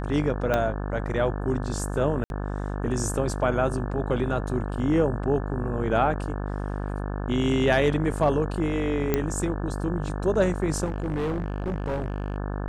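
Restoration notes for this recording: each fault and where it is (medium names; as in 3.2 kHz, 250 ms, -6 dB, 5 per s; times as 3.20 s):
buzz 50 Hz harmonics 35 -30 dBFS
0.54 s: pop -11 dBFS
2.24–2.30 s: dropout 61 ms
4.79 s: dropout 2.7 ms
9.14 s: pop -9 dBFS
10.84–12.36 s: clipped -23.5 dBFS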